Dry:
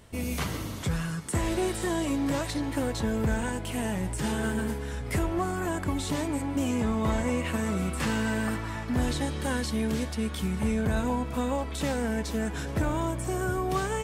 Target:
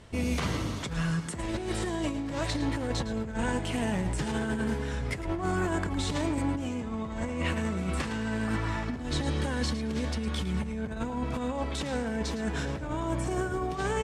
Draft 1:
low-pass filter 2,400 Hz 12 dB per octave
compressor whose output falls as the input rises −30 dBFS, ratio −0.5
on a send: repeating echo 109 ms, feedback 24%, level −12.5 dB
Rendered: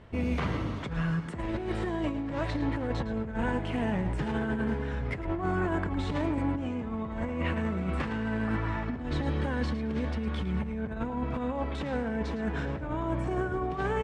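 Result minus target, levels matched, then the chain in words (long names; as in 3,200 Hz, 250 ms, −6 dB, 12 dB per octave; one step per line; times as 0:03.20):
8,000 Hz band −16.5 dB
low-pass filter 6,800 Hz 12 dB per octave
compressor whose output falls as the input rises −30 dBFS, ratio −0.5
on a send: repeating echo 109 ms, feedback 24%, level −12.5 dB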